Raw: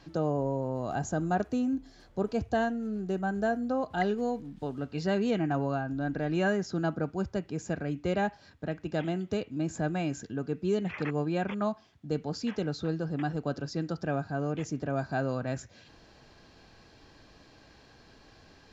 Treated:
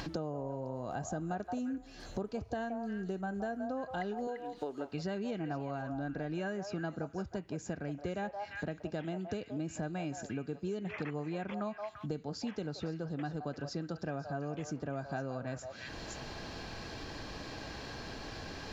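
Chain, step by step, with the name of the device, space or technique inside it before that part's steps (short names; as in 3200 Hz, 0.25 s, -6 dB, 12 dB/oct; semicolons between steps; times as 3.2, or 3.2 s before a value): 4.27–4.93 resonant low shelf 250 Hz -13 dB, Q 1.5; delay with a stepping band-pass 0.172 s, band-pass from 780 Hz, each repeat 1.4 oct, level -6 dB; upward and downward compression (upward compressor, threshold -42 dBFS; compressor 5:1, threshold -43 dBFS, peak gain reduction 17.5 dB); gain +6.5 dB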